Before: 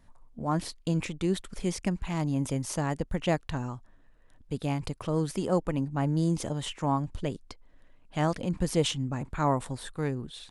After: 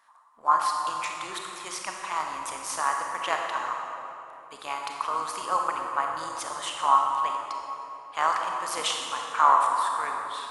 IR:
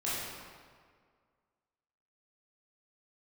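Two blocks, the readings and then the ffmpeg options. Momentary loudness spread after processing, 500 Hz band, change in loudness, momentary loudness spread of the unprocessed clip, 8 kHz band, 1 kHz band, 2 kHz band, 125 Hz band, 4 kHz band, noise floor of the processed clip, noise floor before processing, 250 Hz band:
14 LU, −5.5 dB, +3.5 dB, 8 LU, +4.5 dB, +12.5 dB, +8.0 dB, below −25 dB, +4.5 dB, −47 dBFS, −58 dBFS, −19.0 dB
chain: -filter_complex "[0:a]highpass=frequency=1100:width_type=q:width=4.9,tremolo=f=210:d=0.519,asplit=2[link_01][link_02];[1:a]atrim=start_sample=2205,asetrate=22932,aresample=44100,highshelf=frequency=8600:gain=6.5[link_03];[link_02][link_03]afir=irnorm=-1:irlink=0,volume=-10dB[link_04];[link_01][link_04]amix=inputs=2:normalize=0,volume=1.5dB"

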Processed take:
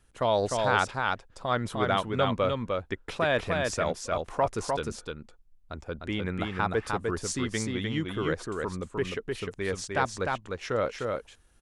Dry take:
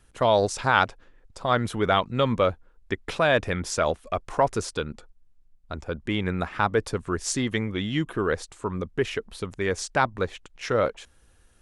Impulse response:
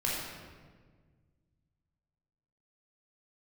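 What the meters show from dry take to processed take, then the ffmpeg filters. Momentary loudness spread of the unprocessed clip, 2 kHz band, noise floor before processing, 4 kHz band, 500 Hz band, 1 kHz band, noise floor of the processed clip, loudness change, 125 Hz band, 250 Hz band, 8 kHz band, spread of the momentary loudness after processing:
11 LU, −3.5 dB, −58 dBFS, −3.5 dB, −3.5 dB, −3.5 dB, −60 dBFS, −3.5 dB, −3.5 dB, −3.5 dB, −3.5 dB, 8 LU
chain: -af "aecho=1:1:303:0.668,volume=-5dB"

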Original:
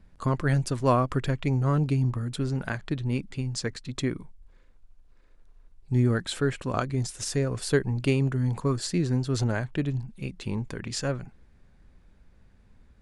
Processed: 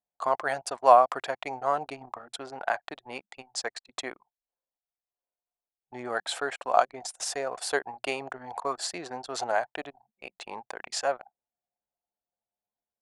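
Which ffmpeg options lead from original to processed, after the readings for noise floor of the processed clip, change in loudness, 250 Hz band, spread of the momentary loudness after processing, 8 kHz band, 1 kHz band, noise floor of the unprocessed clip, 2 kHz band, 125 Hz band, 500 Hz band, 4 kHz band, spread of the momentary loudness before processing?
below −85 dBFS, −1.0 dB, −16.5 dB, 16 LU, 0.0 dB, +8.5 dB, −57 dBFS, +1.5 dB, −30.0 dB, +1.0 dB, 0.0 dB, 9 LU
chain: -af "highpass=frequency=730:width_type=q:width=4.9,anlmdn=0.251"

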